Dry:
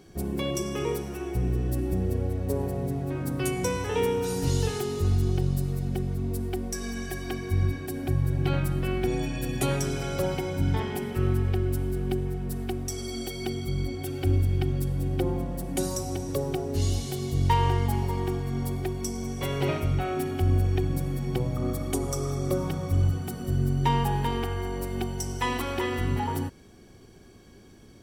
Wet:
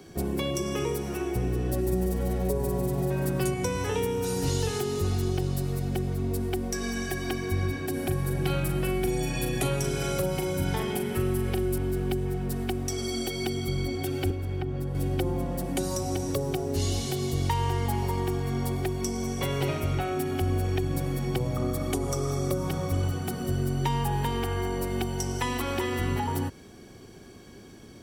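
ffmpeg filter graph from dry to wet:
-filter_complex "[0:a]asettb=1/sr,asplit=3[a][b][c];[a]atrim=end=1.724[d];[b]atrim=start=1.72:end=3.54,asetpts=PTS-STARTPTS,afade=t=in:d=0.004:c=qsin,afade=t=out:st=1.816:d=0.004:c=qsin,aecho=1:1:5.2:0.82,atrim=end_sample=80262,aecho=1:1:145|290|435|580|725:0.562|0.219|0.0855|0.0334|0.013,atrim=end_sample=80262[e];[c]atrim=start=3.536[f];[d][e]acrossfade=d=0.004:c1=hsin:c2=qsin[g];[g][f]acrossfade=d=0.004:c1=qsin:c2=hsin,asettb=1/sr,asplit=3[h][i][j];[h]atrim=end=7.934[k];[i]atrim=start=7.93:end=11.78,asetpts=PTS-STARTPTS,afade=t=in:d=0.004:c=qsin,afade=t=out:st=3.846:d=0.004:c=qsin,equalizer=f=11k:t=o:w=0.9:g=8.5,asplit=2[l][m];[m]adelay=38,volume=-7dB[n];[l][n]amix=inputs=2:normalize=0,atrim=end_sample=169785[o];[j]atrim=start=11.776[p];[k][o]acrossfade=d=0.004:c1=hsin:c2=qsin[q];[q][p]acrossfade=d=0.004:c1=qsin:c2=hsin,asettb=1/sr,asplit=3[r][s][t];[r]atrim=end=14.304[u];[s]atrim=start=14.3:end=14.95,asetpts=PTS-STARTPTS,afade=t=in:d=0.004:c=qsin,afade=t=out:st=0.646:d=0.004:c=qsin,equalizer=f=11k:t=o:w=2.3:g=-7.5,acrossover=split=440|1600[v][w][x];[v]acompressor=threshold=-30dB:ratio=4[y];[w]acompressor=threshold=-42dB:ratio=4[z];[x]acompressor=threshold=-56dB:ratio=4[aa];[y][z][aa]amix=inputs=3:normalize=0[ab];[t]atrim=start=14.946[ac];[u][ab]acrossfade=d=0.004:c1=hsin:c2=qsin[ad];[ad][ac]acrossfade=d=0.004:c1=qsin:c2=hsin,lowshelf=f=69:g=-8.5,acrossover=split=120|300|5100[ae][af][ag][ah];[ae]acompressor=threshold=-33dB:ratio=4[ai];[af]acompressor=threshold=-40dB:ratio=4[aj];[ag]acompressor=threshold=-35dB:ratio=4[ak];[ah]acompressor=threshold=-43dB:ratio=4[al];[ai][aj][ak][al]amix=inputs=4:normalize=0,volume=5dB"

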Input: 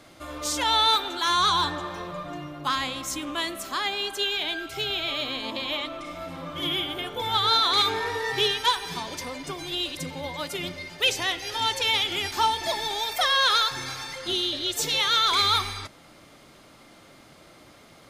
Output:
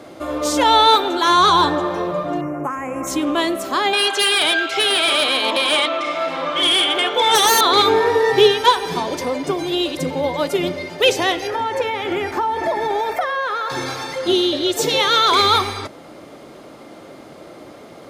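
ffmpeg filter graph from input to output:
-filter_complex "[0:a]asettb=1/sr,asplit=3[a][b][c];[a]atrim=end=2.414[d];[b]atrim=start=2.41:end=3.07,asetpts=PTS-STARTPTS,afade=t=in:d=0.004:c=qsin,afade=t=out:st=0.656:d=0.004:c=qsin,acompressor=threshold=-30dB:ratio=5:attack=3.2:release=140:knee=1:detection=peak,asuperstop=centerf=3900:order=8:qfactor=1.1[e];[c]atrim=start=3.066[f];[d][e]acrossfade=d=0.004:c1=hsin:c2=qsin[g];[g][f]acrossfade=d=0.004:c1=qsin:c2=hsin,asettb=1/sr,asplit=3[h][i][j];[h]atrim=end=3.934[k];[i]atrim=start=3.93:end=7.61,asetpts=PTS-STARTPTS,afade=t=in:d=0.004:c=qsin,afade=t=out:st=3.676:d=0.004:c=qsin,lowpass=2.9k,aderivative,aeval=exprs='0.133*sin(PI/2*7.94*val(0)/0.133)':c=same[l];[j]atrim=start=7.606[m];[k][l]acrossfade=d=0.004:c1=hsin:c2=qsin[n];[n][m]acrossfade=d=0.004:c1=qsin:c2=hsin,asettb=1/sr,asplit=3[o][p][q];[o]atrim=end=11.474[r];[p]atrim=start=11.47:end=13.7,asetpts=PTS-STARTPTS,afade=t=in:d=0.004:c=qsin,afade=t=out:st=2.226:d=0.004:c=qsin,highshelf=f=2.6k:t=q:w=1.5:g=-9,acompressor=threshold=-28dB:ratio=10:attack=3.2:release=140:knee=1:detection=peak[s];[q]atrim=start=13.696[t];[r][s]acrossfade=d=0.004:c1=hsin:c2=qsin[u];[u][t]acrossfade=d=0.004:c1=qsin:c2=hsin,highpass=42,equalizer=f=440:w=0.5:g=13,volume=3.5dB"

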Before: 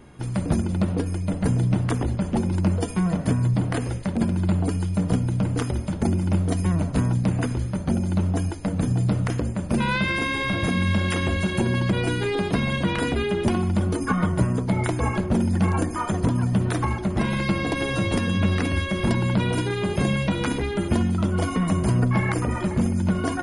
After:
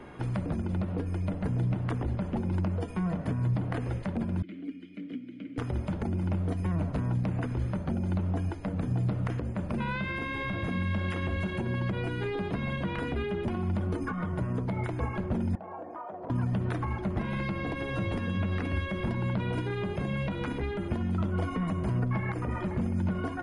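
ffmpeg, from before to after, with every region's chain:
-filter_complex "[0:a]asettb=1/sr,asplit=3[a][b][c];[a]atrim=end=4.424[d];[b]atrim=start=4.42:end=5.58,asetpts=PTS-STARTPTS,afade=t=in:d=0.004:c=qsin,afade=t=out:st=1.156:d=0.004:c=qsin,equalizer=f=83:w=0.74:g=-14,acrusher=bits=6:mode=log:mix=0:aa=0.000001,asplit=3[e][f][g];[e]bandpass=f=270:t=q:w=8,volume=0dB[h];[f]bandpass=f=2.29k:t=q:w=8,volume=-6dB[i];[g]bandpass=f=3.01k:t=q:w=8,volume=-9dB[j];[h][i][j]amix=inputs=3:normalize=0[k];[c]atrim=start=5.576[l];[d][k]acrossfade=d=0.004:c1=hsin:c2=qsin[m];[m][l]acrossfade=d=0.004:c1=qsin:c2=hsin,asettb=1/sr,asplit=3[n][o][p];[n]atrim=end=15.554[q];[o]atrim=start=15.55:end=16.3,asetpts=PTS-STARTPTS,afade=t=in:d=0.004:c=qsin,afade=t=out:st=0.746:d=0.004:c=qsin,bandpass=f=670:t=q:w=2.9,acompressor=threshold=-37dB:ratio=3:attack=3.2:release=140:knee=1:detection=peak[r];[p]atrim=start=16.296[s];[q][r]acrossfade=d=0.004:c1=hsin:c2=qsin[t];[t][s]acrossfade=d=0.004:c1=qsin:c2=hsin,alimiter=limit=-17dB:level=0:latency=1:release=317,bass=f=250:g=-8,treble=f=4k:g=-15,acrossover=split=180[u][v];[v]acompressor=threshold=-47dB:ratio=2[w];[u][w]amix=inputs=2:normalize=0,volume=5.5dB"

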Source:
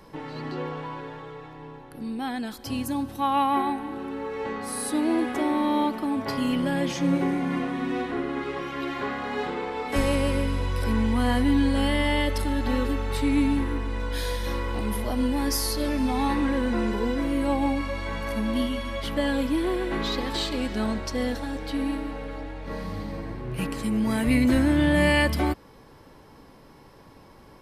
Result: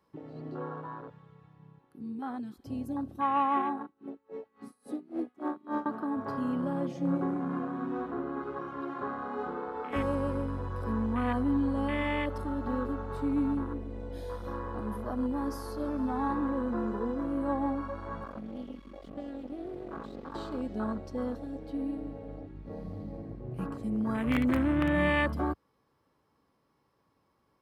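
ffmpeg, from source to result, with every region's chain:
-filter_complex "[0:a]asettb=1/sr,asplit=3[a][b][c];[a]atrim=end=3.814[d];[b]atrim=start=3.81:end=5.86,asetpts=PTS-STARTPTS,afade=t=in:d=0.004:c=qsin,afade=t=out:st=2.046:d=0.004:c=qsin,acompressor=mode=upward:threshold=-26dB:ratio=2.5:attack=3.2:release=140:knee=2.83:detection=peak,aeval=exprs='0.119*(abs(mod(val(0)/0.119+3,4)-2)-1)':c=same,aeval=exprs='val(0)*pow(10,-23*(0.5-0.5*cos(2*PI*3.6*n/s))/20)':c=same[e];[c]atrim=start=5.856[f];[d][e]acrossfade=d=0.004:c1=hsin:c2=qsin[g];[g][f]acrossfade=d=0.004:c1=qsin:c2=hsin,asettb=1/sr,asplit=3[h][i][j];[h]atrim=end=18.244[k];[i]atrim=start=18.24:end=20.35,asetpts=PTS-STARTPTS,afade=t=in:d=0.004:c=qsin,afade=t=out:st=2.106:d=0.004:c=qsin,bandreject=f=79.88:t=h:w=4,bandreject=f=159.76:t=h:w=4,bandreject=f=239.64:t=h:w=4,bandreject=f=319.52:t=h:w=4,bandreject=f=399.4:t=h:w=4,bandreject=f=479.28:t=h:w=4,bandreject=f=559.16:t=h:w=4,bandreject=f=639.04:t=h:w=4,bandreject=f=718.92:t=h:w=4,bandreject=f=798.8:t=h:w=4,acrossover=split=1400|5600[l][m][n];[l]acompressor=threshold=-25dB:ratio=4[o];[m]acompressor=threshold=-35dB:ratio=4[p];[n]acompressor=threshold=-59dB:ratio=4[q];[o][p][q]amix=inputs=3:normalize=0,aeval=exprs='max(val(0),0)':c=same[r];[j]atrim=start=20.346[s];[k][r]acrossfade=d=0.004:c1=hsin:c2=qsin[t];[t][s]acrossfade=d=0.004:c1=qsin:c2=hsin,asettb=1/sr,asplit=3[u][v][w];[u]atrim=end=21.954[x];[v]atrim=start=21.95:end=24.88,asetpts=PTS-STARTPTS,afade=t=in:d=0.004:c=qsin,afade=t=out:st=2.926:d=0.004:c=qsin,aeval=exprs='(mod(3.98*val(0)+1,2)-1)/3.98':c=same,aeval=exprs='val(0)+0.0126*(sin(2*PI*50*n/s)+sin(2*PI*2*50*n/s)/2+sin(2*PI*3*50*n/s)/3+sin(2*PI*4*50*n/s)/4+sin(2*PI*5*50*n/s)/5)':c=same[y];[w]atrim=start=24.876[z];[x][y]acrossfade=d=0.004:c1=hsin:c2=qsin[aa];[aa][z]acrossfade=d=0.004:c1=qsin:c2=hsin,equalizer=f=1.2k:t=o:w=0.26:g=8,afwtdn=0.0355,highpass=64,volume=-6dB"

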